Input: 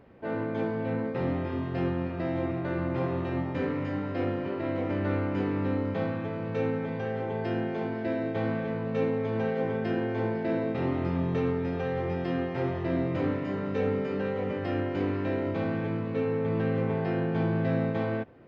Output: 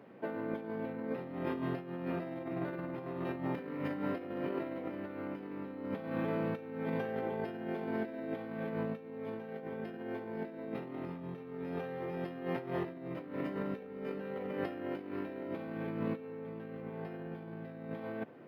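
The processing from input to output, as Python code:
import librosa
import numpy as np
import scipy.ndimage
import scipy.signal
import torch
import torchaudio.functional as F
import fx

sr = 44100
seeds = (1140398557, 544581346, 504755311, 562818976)

y = scipy.signal.sosfilt(scipy.signal.butter(4, 150.0, 'highpass', fs=sr, output='sos'), x)
y = fx.over_compress(y, sr, threshold_db=-34.0, ratio=-0.5)
y = np.interp(np.arange(len(y)), np.arange(len(y))[::3], y[::3])
y = y * librosa.db_to_amplitude(-4.0)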